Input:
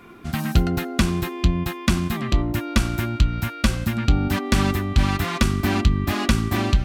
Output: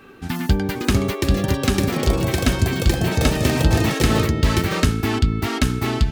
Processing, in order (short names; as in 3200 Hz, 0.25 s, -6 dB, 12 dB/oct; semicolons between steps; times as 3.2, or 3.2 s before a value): varispeed +12%; echoes that change speed 0.596 s, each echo +6 st, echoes 3